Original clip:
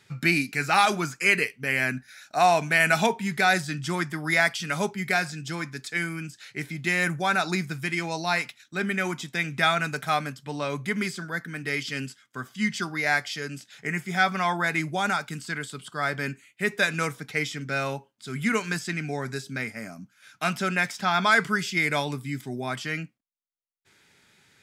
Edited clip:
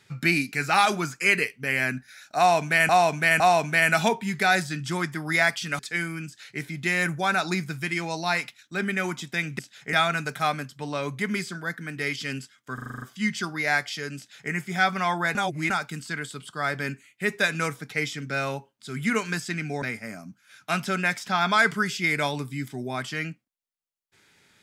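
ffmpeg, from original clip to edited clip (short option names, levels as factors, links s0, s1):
-filter_complex "[0:a]asplit=16[s0][s1][s2][s3][s4][s5][s6][s7][s8][s9][s10][s11][s12][s13][s14][s15];[s0]atrim=end=2.892[s16];[s1]atrim=start=2.378:end=2.892[s17];[s2]atrim=start=2.378:end=4.772[s18];[s3]atrim=start=5.798:end=9.602[s19];[s4]atrim=start=13.558:end=13.902[s20];[s5]atrim=start=9.598:end=12.452[s21];[s6]atrim=start=12.408:end=12.452[s22];[s7]atrim=start=12.408:end=12.452[s23];[s8]atrim=start=12.408:end=12.452[s24];[s9]atrim=start=12.408:end=12.452[s25];[s10]atrim=start=12.408:end=12.452[s26];[s11]atrim=start=12.408:end=12.452[s27];[s12]atrim=start=12.408:end=14.742[s28];[s13]atrim=start=14.738:end=15.092,asetpts=PTS-STARTPTS,areverse[s29];[s14]atrim=start=15.088:end=19.212[s30];[s15]atrim=start=19.548[s31];[s16][s17]acrossfade=d=0.004:c1=hsin:c2=hsin[s32];[s32][s18]acrossfade=d=0.004:c1=hsin:c2=hsin[s33];[s33][s19]acrossfade=d=0.004:c1=hsin:c2=hsin[s34];[s34][s20]acrossfade=d=0.004:c1=hsin:c2=hsin[s35];[s35][s21]acrossfade=d=0.004:c1=hsin:c2=hsin[s36];[s36][s22]acrossfade=d=0.004:c1=hsin:c2=hsin[s37];[s37][s23]acrossfade=d=0.004:c1=hsin:c2=hsin[s38];[s38][s24]acrossfade=d=0.004:c1=hsin:c2=hsin[s39];[s39][s25]acrossfade=d=0.004:c1=hsin:c2=hsin[s40];[s40][s26]acrossfade=d=0.004:c1=hsin:c2=hsin[s41];[s41][s27]acrossfade=d=0.004:c1=hsin:c2=hsin[s42];[s42][s28]acrossfade=d=0.004:c1=hsin:c2=hsin[s43];[s43][s29]acrossfade=d=0.004:c1=hsin:c2=hsin[s44];[s44][s30]acrossfade=d=0.004:c1=hsin:c2=hsin[s45];[s45][s31]acrossfade=d=0.004:c1=hsin:c2=hsin"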